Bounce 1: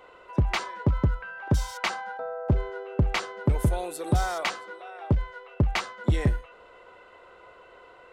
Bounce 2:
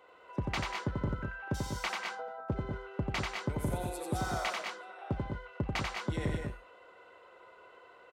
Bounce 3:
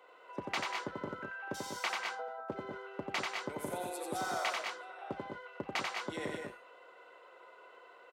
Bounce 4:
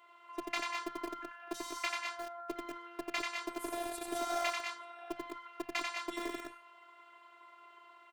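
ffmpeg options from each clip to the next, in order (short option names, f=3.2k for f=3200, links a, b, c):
-filter_complex "[0:a]highpass=f=150:p=1,asplit=2[a][b];[b]aecho=0:1:90|147|191|210|239:0.708|0.1|0.355|0.531|0.133[c];[a][c]amix=inputs=2:normalize=0,volume=-8dB"
-af "highpass=330"
-filter_complex "[0:a]acrossover=split=320|640|5700[a][b][c][d];[b]acrusher=bits=6:mix=0:aa=0.000001[e];[a][e][c][d]amix=inputs=4:normalize=0,afftfilt=real='hypot(re,im)*cos(PI*b)':imag='0':win_size=512:overlap=0.75,volume=3.5dB"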